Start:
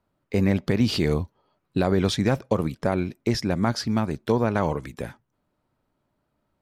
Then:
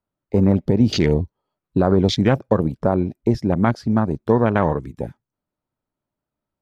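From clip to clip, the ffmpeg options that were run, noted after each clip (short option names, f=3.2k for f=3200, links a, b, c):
-af "afwtdn=0.0282,volume=5.5dB"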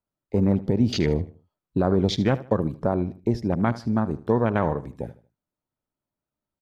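-af "aecho=1:1:77|154|231:0.141|0.0438|0.0136,volume=-5dB"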